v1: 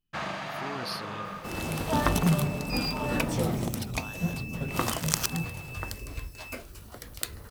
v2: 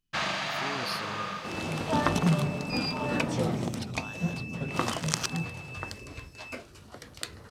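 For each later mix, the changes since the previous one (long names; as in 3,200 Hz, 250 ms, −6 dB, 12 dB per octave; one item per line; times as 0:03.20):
first sound: add parametric band 4,600 Hz +10 dB 2.6 octaves
second sound: add band-pass filter 100–6,800 Hz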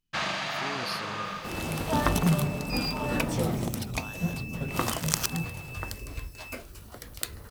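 second sound: remove band-pass filter 100–6,800 Hz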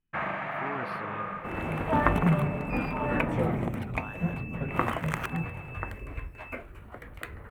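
first sound: add parametric band 4,600 Hz −10 dB 2.6 octaves
master: add drawn EQ curve 220 Hz 0 dB, 2,200 Hz +4 dB, 5,000 Hz −26 dB, 8,100 Hz −19 dB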